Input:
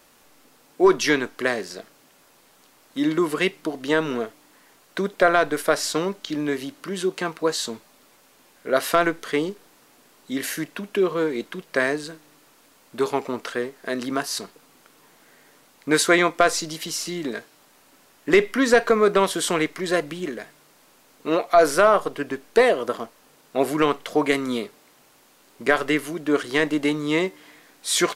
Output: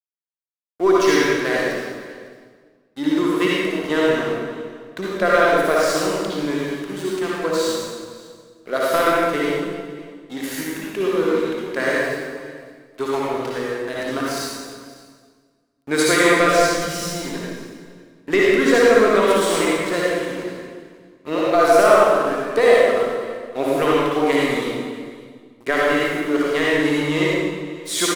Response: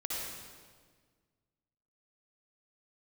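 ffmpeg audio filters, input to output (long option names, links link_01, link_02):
-filter_complex "[0:a]asplit=3[link_01][link_02][link_03];[link_01]afade=type=out:start_time=16.59:duration=0.02[link_04];[link_02]asubboost=boost=9.5:cutoff=120,afade=type=in:start_time=16.59:duration=0.02,afade=type=out:start_time=17.13:duration=0.02[link_05];[link_03]afade=type=in:start_time=17.13:duration=0.02[link_06];[link_04][link_05][link_06]amix=inputs=3:normalize=0,aeval=exprs='sgn(val(0))*max(abs(val(0))-0.0188,0)':channel_layout=same,aecho=1:1:555:0.0891[link_07];[1:a]atrim=start_sample=2205[link_08];[link_07][link_08]afir=irnorm=-1:irlink=0,volume=1dB"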